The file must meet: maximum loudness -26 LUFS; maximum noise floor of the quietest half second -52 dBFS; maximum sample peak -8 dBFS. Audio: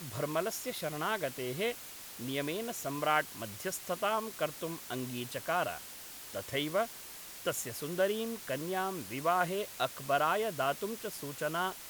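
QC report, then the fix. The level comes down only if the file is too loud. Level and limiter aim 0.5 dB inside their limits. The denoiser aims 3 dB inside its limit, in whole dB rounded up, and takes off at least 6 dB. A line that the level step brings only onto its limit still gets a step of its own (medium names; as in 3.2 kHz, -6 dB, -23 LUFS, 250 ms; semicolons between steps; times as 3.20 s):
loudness -35.0 LUFS: pass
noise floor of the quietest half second -48 dBFS: fail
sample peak -14.0 dBFS: pass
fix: noise reduction 7 dB, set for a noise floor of -48 dBFS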